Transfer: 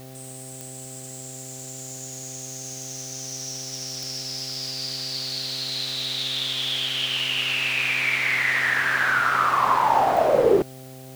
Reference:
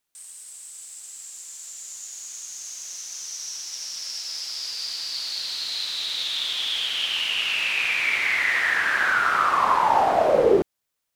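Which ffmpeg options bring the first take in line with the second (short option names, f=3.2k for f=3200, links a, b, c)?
-af "adeclick=t=4,bandreject=f=130.8:t=h:w=4,bandreject=f=261.6:t=h:w=4,bandreject=f=392.4:t=h:w=4,bandreject=f=523.2:t=h:w=4,bandreject=f=654:t=h:w=4,bandreject=f=784.8:t=h:w=4,afwtdn=0.0035"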